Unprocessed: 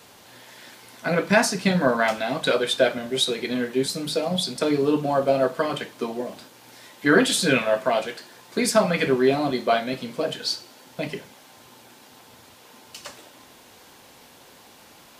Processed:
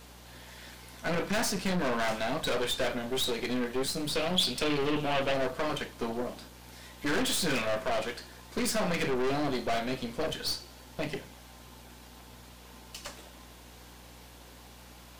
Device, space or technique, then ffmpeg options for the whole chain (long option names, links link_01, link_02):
valve amplifier with mains hum: -filter_complex "[0:a]aeval=exprs='(tanh(22.4*val(0)+0.65)-tanh(0.65))/22.4':channel_layout=same,aeval=exprs='val(0)+0.00224*(sin(2*PI*60*n/s)+sin(2*PI*2*60*n/s)/2+sin(2*PI*3*60*n/s)/3+sin(2*PI*4*60*n/s)/4+sin(2*PI*5*60*n/s)/5)':channel_layout=same,asettb=1/sr,asplit=3[link_01][link_02][link_03];[link_01]atrim=end=4.154[link_04];[link_02]atrim=start=4.15:end=5.34,asetpts=PTS-STARTPTS,afade=type=in:duration=0.004:curve=qsin,afade=type=out:start_time=1.186:duration=0.004:curve=qsin,equalizer=frequency=2900:width=1.7:gain=11.5[link_05];[link_03]atrim=start=5.336[link_06];[link_04][link_05]acrossfade=duration=0.004:curve1=hsin:curve2=qsin[link_07];[link_07][link_06]acrossfade=duration=0.004:curve1=qsin:curve2=hsin"